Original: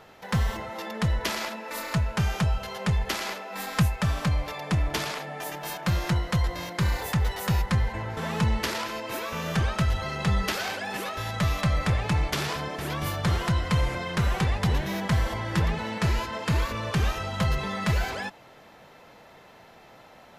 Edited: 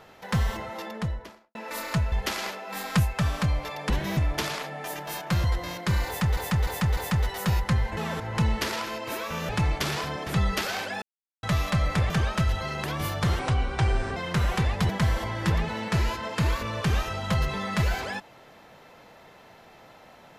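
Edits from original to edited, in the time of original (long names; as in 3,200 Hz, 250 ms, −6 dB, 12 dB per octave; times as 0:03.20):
0:00.69–0:01.55: fade out and dull
0:02.12–0:02.95: remove
0:06.00–0:06.36: remove
0:06.99–0:07.29: repeat, 4 plays
0:07.99–0:08.40: reverse
0:09.51–0:10.25: swap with 0:12.01–0:12.86
0:10.93–0:11.34: silence
0:13.41–0:13.99: play speed 75%
0:14.72–0:14.99: move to 0:04.73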